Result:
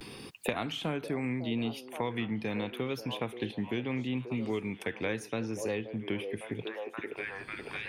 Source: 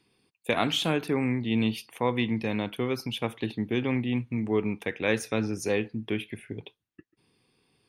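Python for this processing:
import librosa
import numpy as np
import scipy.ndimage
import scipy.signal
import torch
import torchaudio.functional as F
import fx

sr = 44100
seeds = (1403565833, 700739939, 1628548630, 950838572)

y = fx.echo_stepped(x, sr, ms=540, hz=480.0, octaves=0.7, feedback_pct=70, wet_db=-9.0)
y = fx.vibrato(y, sr, rate_hz=0.77, depth_cents=67.0)
y = fx.band_squash(y, sr, depth_pct=100)
y = F.gain(torch.from_numpy(y), -6.5).numpy()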